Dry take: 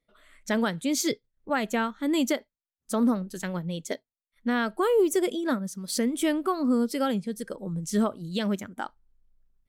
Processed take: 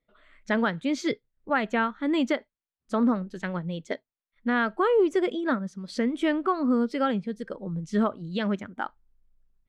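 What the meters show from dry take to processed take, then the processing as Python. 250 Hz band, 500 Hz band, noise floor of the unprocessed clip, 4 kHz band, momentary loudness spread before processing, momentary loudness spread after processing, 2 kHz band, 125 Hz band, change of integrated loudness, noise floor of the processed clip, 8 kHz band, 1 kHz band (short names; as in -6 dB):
0.0 dB, +0.5 dB, under -85 dBFS, -3.5 dB, 10 LU, 10 LU, +3.0 dB, 0.0 dB, +0.5 dB, under -85 dBFS, under -10 dB, +2.5 dB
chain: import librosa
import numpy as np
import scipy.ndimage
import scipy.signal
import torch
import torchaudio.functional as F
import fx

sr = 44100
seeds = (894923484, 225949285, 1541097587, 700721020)

y = scipy.signal.sosfilt(scipy.signal.butter(2, 3200.0, 'lowpass', fs=sr, output='sos'), x)
y = fx.dynamic_eq(y, sr, hz=1500.0, q=0.93, threshold_db=-41.0, ratio=4.0, max_db=4)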